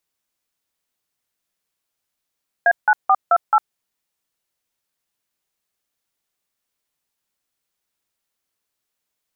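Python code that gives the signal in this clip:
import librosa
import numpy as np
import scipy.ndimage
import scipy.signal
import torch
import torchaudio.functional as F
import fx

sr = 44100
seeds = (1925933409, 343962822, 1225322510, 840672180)

y = fx.dtmf(sr, digits='A9428', tone_ms=54, gap_ms=163, level_db=-13.0)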